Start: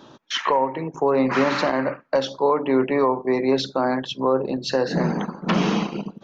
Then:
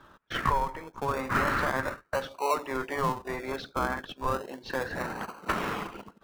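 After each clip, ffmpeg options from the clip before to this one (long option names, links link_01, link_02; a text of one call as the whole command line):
ffmpeg -i in.wav -filter_complex "[0:a]bandpass=frequency=1400:width_type=q:width=2.2:csg=0,asplit=2[link_01][link_02];[link_02]acrusher=samples=36:mix=1:aa=0.000001:lfo=1:lforange=21.6:lforate=0.33,volume=-4.5dB[link_03];[link_01][link_03]amix=inputs=2:normalize=0" out.wav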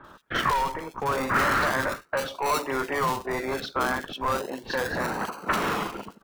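ffmpeg -i in.wav -filter_complex "[0:a]lowshelf=frequency=130:gain=-4.5,acrossover=split=1300[link_01][link_02];[link_01]asoftclip=type=hard:threshold=-32.5dB[link_03];[link_03][link_02]amix=inputs=2:normalize=0,acrossover=split=2400[link_04][link_05];[link_05]adelay=40[link_06];[link_04][link_06]amix=inputs=2:normalize=0,volume=7.5dB" out.wav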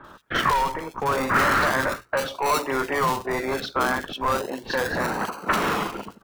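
ffmpeg -i in.wav -af "bandreject=frequency=60:width_type=h:width=6,bandreject=frequency=120:width_type=h:width=6,volume=3dB" out.wav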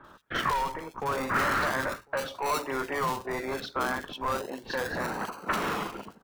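ffmpeg -i in.wav -filter_complex "[0:a]asplit=2[link_01][link_02];[link_02]adelay=1050,volume=-28dB,highshelf=frequency=4000:gain=-23.6[link_03];[link_01][link_03]amix=inputs=2:normalize=0,volume=-6.5dB" out.wav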